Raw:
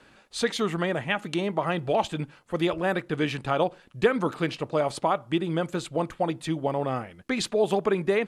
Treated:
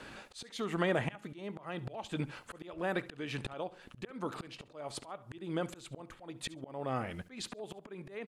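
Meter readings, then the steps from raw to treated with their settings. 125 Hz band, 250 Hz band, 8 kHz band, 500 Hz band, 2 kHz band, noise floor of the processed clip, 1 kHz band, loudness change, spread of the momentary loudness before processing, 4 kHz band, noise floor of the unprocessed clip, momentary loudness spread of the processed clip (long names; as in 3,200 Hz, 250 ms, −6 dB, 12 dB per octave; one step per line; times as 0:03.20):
−10.0 dB, −12.0 dB, −9.5 dB, −14.0 dB, −10.5 dB, −59 dBFS, −13.5 dB, −12.5 dB, 6 LU, −11.0 dB, −57 dBFS, 13 LU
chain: dynamic equaliser 160 Hz, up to −5 dB, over −48 dBFS, Q 6.6
downward compressor 4 to 1, threshold −33 dBFS, peak gain reduction 15 dB
volume swells 490 ms
on a send: repeating echo 69 ms, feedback 16%, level −19 dB
on the sum: level +6.5 dB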